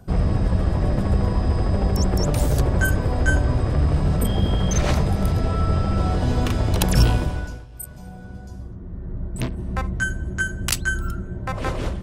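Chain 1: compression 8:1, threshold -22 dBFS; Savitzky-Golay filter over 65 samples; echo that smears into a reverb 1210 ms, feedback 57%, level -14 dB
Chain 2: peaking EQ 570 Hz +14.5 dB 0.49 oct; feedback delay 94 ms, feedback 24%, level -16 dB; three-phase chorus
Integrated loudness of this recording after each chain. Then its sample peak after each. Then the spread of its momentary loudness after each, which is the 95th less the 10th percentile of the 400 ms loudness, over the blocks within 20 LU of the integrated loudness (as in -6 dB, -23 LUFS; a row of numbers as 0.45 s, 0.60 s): -29.0 LUFS, -23.0 LUFS; -14.0 dBFS, -7.0 dBFS; 8 LU, 17 LU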